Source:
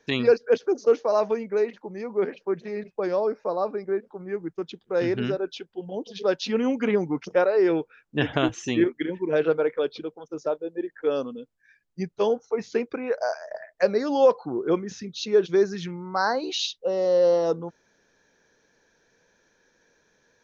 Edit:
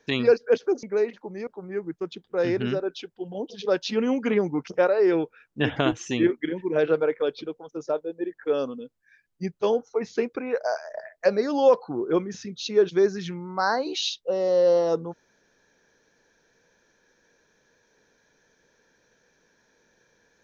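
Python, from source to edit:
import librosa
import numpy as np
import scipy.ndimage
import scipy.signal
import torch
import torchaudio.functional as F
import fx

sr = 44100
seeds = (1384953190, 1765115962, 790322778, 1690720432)

y = fx.edit(x, sr, fx.cut(start_s=0.83, length_s=0.6),
    fx.cut(start_s=2.07, length_s=1.97), tone=tone)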